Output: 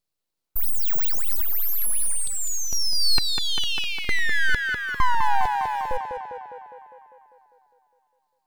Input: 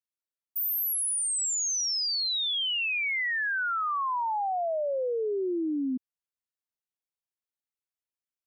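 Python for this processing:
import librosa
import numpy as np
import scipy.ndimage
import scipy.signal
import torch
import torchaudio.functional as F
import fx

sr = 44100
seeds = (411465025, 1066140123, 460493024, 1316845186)

p1 = fx.graphic_eq_31(x, sr, hz=(400, 2000, 4000), db=(6, 5, -6))
p2 = fx.quant_float(p1, sr, bits=2)
p3 = p1 + F.gain(torch.from_numpy(p2), -12.0).numpy()
p4 = fx.filter_lfo_highpass(p3, sr, shape='square', hz=1.1, low_hz=620.0, high_hz=2100.0, q=3.4)
p5 = fx.peak_eq(p4, sr, hz=220.0, db=13.5, octaves=1.0)
p6 = np.abs(p5)
p7 = p6 + fx.echo_tape(p6, sr, ms=201, feedback_pct=67, wet_db=-3.5, lp_hz=3700.0, drive_db=5.0, wow_cents=27, dry=0)
p8 = fx.rider(p7, sr, range_db=5, speed_s=0.5)
y = F.gain(torch.from_numpy(p8), 3.5).numpy()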